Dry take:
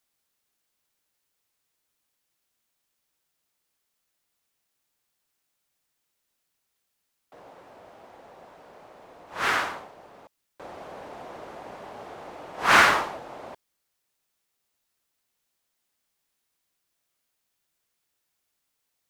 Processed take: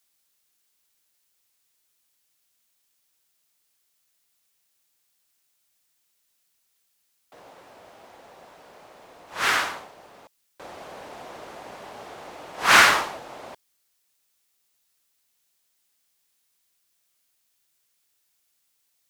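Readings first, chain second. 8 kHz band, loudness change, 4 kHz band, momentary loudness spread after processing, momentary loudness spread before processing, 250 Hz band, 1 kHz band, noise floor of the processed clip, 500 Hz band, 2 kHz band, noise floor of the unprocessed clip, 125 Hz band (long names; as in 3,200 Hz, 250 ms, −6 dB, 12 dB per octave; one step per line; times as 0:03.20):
+7.0 dB, +1.5 dB, +5.5 dB, 19 LU, 24 LU, −1.0 dB, +1.0 dB, −72 dBFS, −0.5 dB, +2.5 dB, −79 dBFS, −1.0 dB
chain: high-shelf EQ 2,200 Hz +9 dB
level −1 dB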